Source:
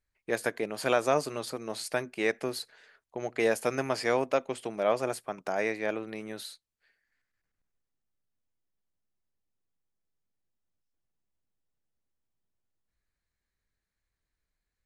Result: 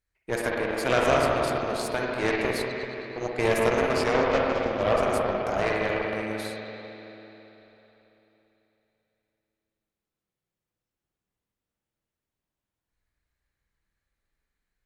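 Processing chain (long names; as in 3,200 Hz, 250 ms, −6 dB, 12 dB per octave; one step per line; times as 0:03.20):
0:04.13–0:04.82: variable-slope delta modulation 32 kbit/s
spring reverb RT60 3.6 s, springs 49/55 ms, chirp 65 ms, DRR −3 dB
harmonic generator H 6 −16 dB, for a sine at −8.5 dBFS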